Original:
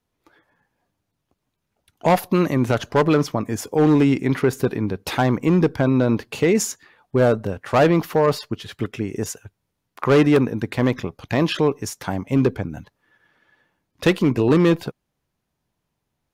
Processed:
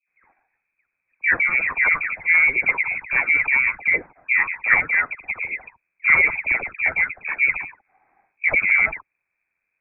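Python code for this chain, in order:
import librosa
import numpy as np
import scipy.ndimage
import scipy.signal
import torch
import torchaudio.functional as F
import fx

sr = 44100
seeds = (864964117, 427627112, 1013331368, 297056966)

y = fx.dispersion(x, sr, late='highs', ms=149.0, hz=710.0)
y = fx.freq_invert(y, sr, carrier_hz=2500)
y = fx.stretch_grains(y, sr, factor=0.6, grain_ms=23.0)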